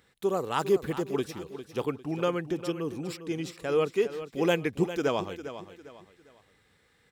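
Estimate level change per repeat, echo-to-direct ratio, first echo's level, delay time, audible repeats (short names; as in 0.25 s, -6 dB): -9.5 dB, -11.5 dB, -12.0 dB, 0.402 s, 3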